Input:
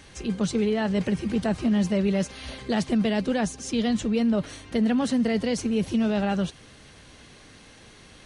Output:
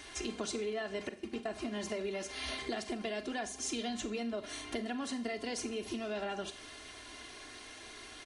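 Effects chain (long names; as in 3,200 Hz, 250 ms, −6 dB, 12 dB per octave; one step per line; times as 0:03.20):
low-shelf EQ 230 Hz −11.5 dB
comb filter 2.9 ms, depth 72%
downward compressor 12 to 1, threshold −34 dBFS, peak gain reduction 13 dB
0:01.09–0:01.50: noise gate −37 dBFS, range −18 dB
parametric band 140 Hz −3 dB 1.3 octaves
four-comb reverb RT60 0.4 s, combs from 30 ms, DRR 10.5 dB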